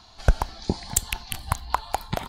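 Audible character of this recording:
background noise floor −51 dBFS
spectral slope −4.0 dB per octave

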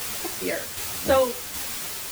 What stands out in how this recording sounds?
a quantiser's noise floor 6 bits, dither triangular
tremolo saw down 1.3 Hz, depth 45%
a shimmering, thickened sound

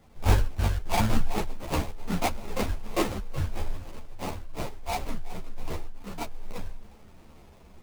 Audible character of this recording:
a quantiser's noise floor 10 bits, dither none
sample-and-hold tremolo
aliases and images of a low sample rate 1,600 Hz, jitter 20%
a shimmering, thickened sound

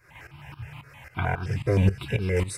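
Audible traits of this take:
tremolo saw up 3.7 Hz, depth 85%
notches that jump at a steady rate 9.6 Hz 850–2,000 Hz

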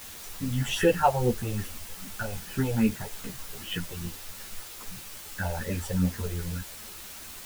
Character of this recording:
phaser sweep stages 4, 2.5 Hz, lowest notch 240–1,300 Hz
a quantiser's noise floor 8 bits, dither triangular
a shimmering, thickened sound

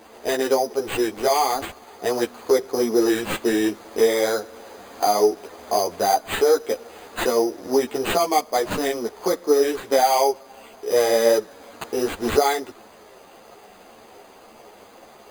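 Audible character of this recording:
aliases and images of a low sample rate 5,500 Hz, jitter 0%
a shimmering, thickened sound

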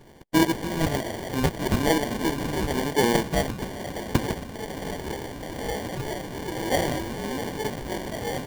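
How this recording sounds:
phaser sweep stages 6, 1.1 Hz, lowest notch 410–2,500 Hz
aliases and images of a low sample rate 1,300 Hz, jitter 0%

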